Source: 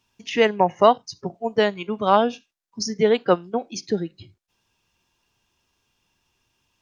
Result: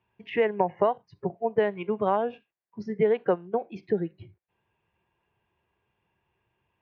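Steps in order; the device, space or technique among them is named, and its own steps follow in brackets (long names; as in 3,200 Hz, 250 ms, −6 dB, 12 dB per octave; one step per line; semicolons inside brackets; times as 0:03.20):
bass amplifier (downward compressor 4 to 1, threshold −20 dBFS, peak gain reduction 10 dB; loudspeaker in its box 67–2,200 Hz, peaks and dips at 260 Hz −10 dB, 400 Hz +3 dB, 1,300 Hz −7 dB)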